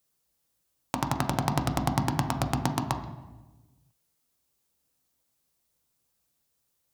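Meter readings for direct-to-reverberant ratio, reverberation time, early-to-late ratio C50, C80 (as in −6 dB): 4.5 dB, 1.1 s, 9.0 dB, 11.0 dB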